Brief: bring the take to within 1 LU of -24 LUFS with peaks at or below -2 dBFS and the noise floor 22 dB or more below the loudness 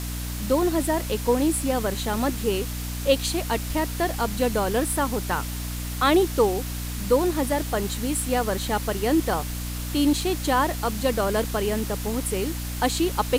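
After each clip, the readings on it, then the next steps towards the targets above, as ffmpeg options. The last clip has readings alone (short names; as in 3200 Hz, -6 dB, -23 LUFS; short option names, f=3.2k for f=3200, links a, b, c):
hum 60 Hz; harmonics up to 300 Hz; hum level -29 dBFS; noise floor -31 dBFS; noise floor target -47 dBFS; loudness -24.5 LUFS; peak -5.0 dBFS; loudness target -24.0 LUFS
-> -af "bandreject=f=60:t=h:w=4,bandreject=f=120:t=h:w=4,bandreject=f=180:t=h:w=4,bandreject=f=240:t=h:w=4,bandreject=f=300:t=h:w=4"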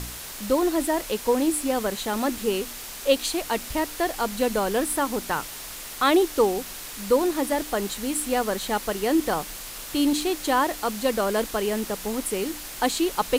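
hum none; noise floor -38 dBFS; noise floor target -47 dBFS
-> -af "afftdn=nr=9:nf=-38"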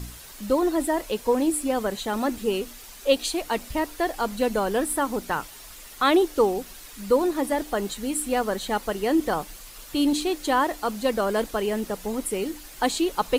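noise floor -44 dBFS; noise floor target -48 dBFS
-> -af "afftdn=nr=6:nf=-44"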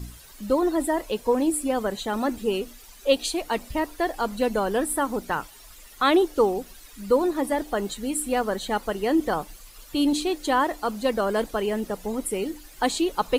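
noise floor -48 dBFS; loudness -25.5 LUFS; peak -6.0 dBFS; loudness target -24.0 LUFS
-> -af "volume=1.5dB"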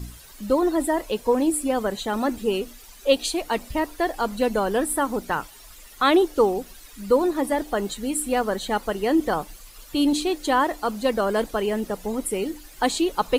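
loudness -24.0 LUFS; peak -4.5 dBFS; noise floor -46 dBFS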